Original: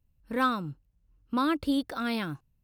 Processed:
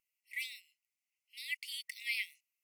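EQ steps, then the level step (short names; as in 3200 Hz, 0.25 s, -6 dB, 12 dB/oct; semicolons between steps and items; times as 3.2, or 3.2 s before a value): brick-wall FIR high-pass 1900 Hz; tilt -2.5 dB/oct; bell 3700 Hz -14.5 dB 0.43 oct; +10.5 dB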